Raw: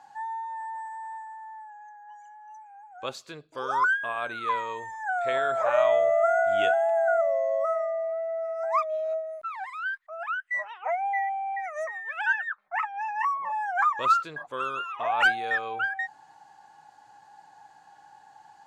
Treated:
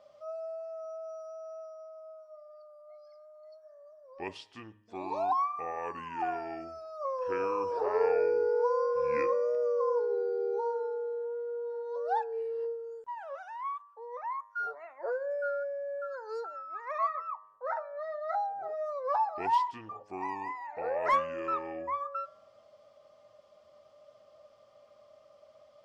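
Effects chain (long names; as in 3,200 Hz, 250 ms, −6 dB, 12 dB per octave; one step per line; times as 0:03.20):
hum removal 145.1 Hz, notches 18
change of speed 0.722×
level −5.5 dB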